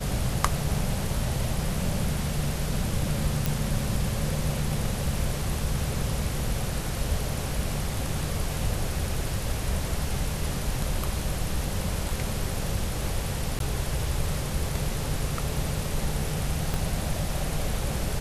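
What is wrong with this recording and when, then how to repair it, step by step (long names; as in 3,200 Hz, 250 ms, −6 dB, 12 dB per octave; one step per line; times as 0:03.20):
0:03.46: click
0:13.59–0:13.60: drop-out 12 ms
0:16.74: click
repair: click removal
repair the gap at 0:13.59, 12 ms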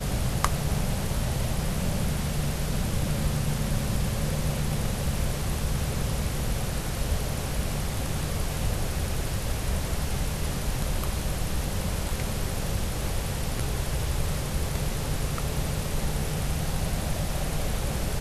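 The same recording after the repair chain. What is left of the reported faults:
0:16.74: click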